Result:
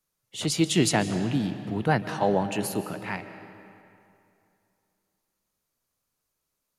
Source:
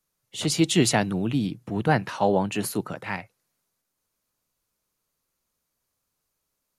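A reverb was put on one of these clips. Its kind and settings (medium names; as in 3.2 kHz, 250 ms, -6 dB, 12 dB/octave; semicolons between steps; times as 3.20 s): algorithmic reverb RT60 2.7 s, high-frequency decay 0.7×, pre-delay 105 ms, DRR 10.5 dB; trim -2 dB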